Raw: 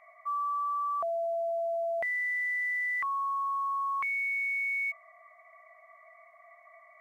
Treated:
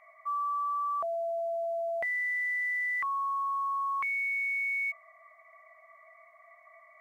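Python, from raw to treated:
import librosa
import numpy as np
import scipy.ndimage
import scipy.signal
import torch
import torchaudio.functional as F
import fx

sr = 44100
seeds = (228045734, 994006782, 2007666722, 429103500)

y = fx.notch(x, sr, hz=710.0, q=16.0)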